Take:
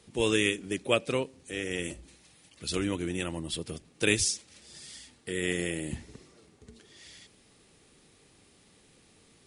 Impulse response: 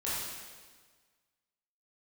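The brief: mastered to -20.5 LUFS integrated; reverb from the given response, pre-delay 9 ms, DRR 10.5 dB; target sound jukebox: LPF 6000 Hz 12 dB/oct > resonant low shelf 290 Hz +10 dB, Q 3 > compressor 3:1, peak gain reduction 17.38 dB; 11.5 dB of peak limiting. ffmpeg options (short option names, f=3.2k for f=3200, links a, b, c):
-filter_complex "[0:a]alimiter=limit=-20dB:level=0:latency=1,asplit=2[a][b];[1:a]atrim=start_sample=2205,adelay=9[c];[b][c]afir=irnorm=-1:irlink=0,volume=-16.5dB[d];[a][d]amix=inputs=2:normalize=0,lowpass=6k,lowshelf=f=290:t=q:w=3:g=10,acompressor=threshold=-39dB:ratio=3,volume=20dB"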